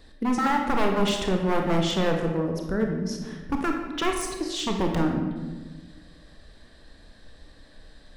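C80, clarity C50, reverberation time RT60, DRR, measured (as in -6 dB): 6.5 dB, 4.0 dB, 1.3 s, 2.0 dB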